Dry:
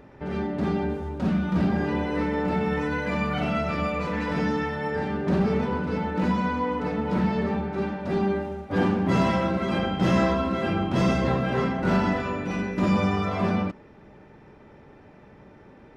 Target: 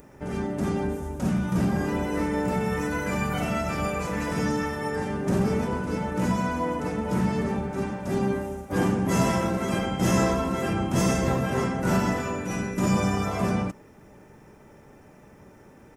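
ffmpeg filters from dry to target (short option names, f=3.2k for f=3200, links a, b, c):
-filter_complex "[0:a]asplit=2[a][b];[b]asetrate=29433,aresample=44100,atempo=1.49831,volume=-8dB[c];[a][c]amix=inputs=2:normalize=0,aexciter=amount=10.4:drive=3.3:freq=6k,volume=-1.5dB"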